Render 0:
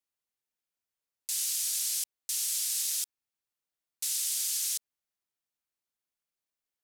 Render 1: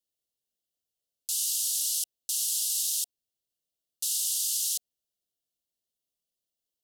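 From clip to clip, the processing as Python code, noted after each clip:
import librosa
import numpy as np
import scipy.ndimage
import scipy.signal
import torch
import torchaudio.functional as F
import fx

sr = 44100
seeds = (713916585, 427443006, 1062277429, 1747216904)

y = scipy.signal.sosfilt(scipy.signal.cheby1(5, 1.0, [720.0, 2800.0], 'bandstop', fs=sr, output='sos'), x)
y = y * 10.0 ** (3.0 / 20.0)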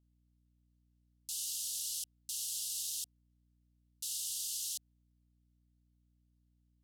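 y = fx.high_shelf(x, sr, hz=7400.0, db=-5.5)
y = fx.add_hum(y, sr, base_hz=60, snr_db=29)
y = y * 10.0 ** (-7.0 / 20.0)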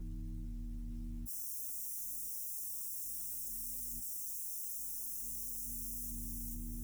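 y = fx.partial_stretch(x, sr, pct=128)
y = fx.echo_feedback(y, sr, ms=442, feedback_pct=43, wet_db=-5.5)
y = fx.env_flatten(y, sr, amount_pct=100)
y = y * 10.0 ** (3.5 / 20.0)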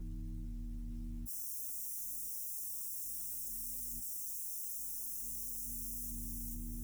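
y = x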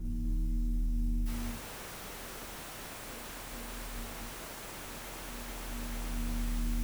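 y = x + 10.0 ** (-3.5 / 20.0) * np.pad(x, (int(250 * sr / 1000.0), 0))[:len(x)]
y = fx.rev_schroeder(y, sr, rt60_s=0.62, comb_ms=30, drr_db=-3.0)
y = fx.slew_limit(y, sr, full_power_hz=24.0)
y = y * 10.0 ** (4.0 / 20.0)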